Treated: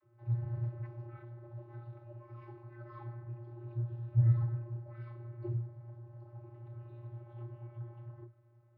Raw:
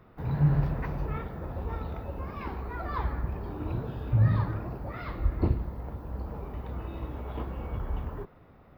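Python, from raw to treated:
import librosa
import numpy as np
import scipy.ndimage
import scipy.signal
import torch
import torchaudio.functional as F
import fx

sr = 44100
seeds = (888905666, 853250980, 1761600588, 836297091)

y = fx.vocoder(x, sr, bands=32, carrier='square', carrier_hz=118.0)
y = y * librosa.db_to_amplitude(-4.5)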